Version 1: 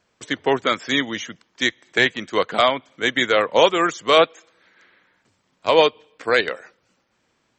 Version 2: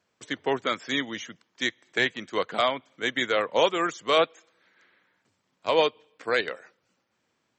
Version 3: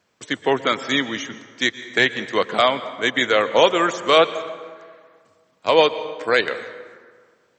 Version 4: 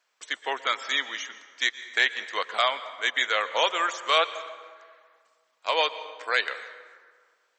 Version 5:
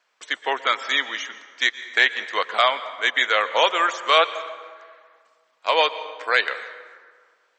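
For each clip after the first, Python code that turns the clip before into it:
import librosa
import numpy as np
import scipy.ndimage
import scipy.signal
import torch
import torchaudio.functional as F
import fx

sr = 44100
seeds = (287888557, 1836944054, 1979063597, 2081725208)

y1 = scipy.signal.sosfilt(scipy.signal.butter(2, 82.0, 'highpass', fs=sr, output='sos'), x)
y1 = y1 * 10.0 ** (-7.0 / 20.0)
y2 = fx.rev_plate(y1, sr, seeds[0], rt60_s=1.8, hf_ratio=0.55, predelay_ms=105, drr_db=13.0)
y2 = y2 * 10.0 ** (7.0 / 20.0)
y3 = scipy.signal.sosfilt(scipy.signal.butter(2, 860.0, 'highpass', fs=sr, output='sos'), y2)
y3 = y3 * 10.0 ** (-4.0 / 20.0)
y4 = fx.high_shelf(y3, sr, hz=6400.0, db=-10.5)
y4 = y4 * 10.0 ** (6.0 / 20.0)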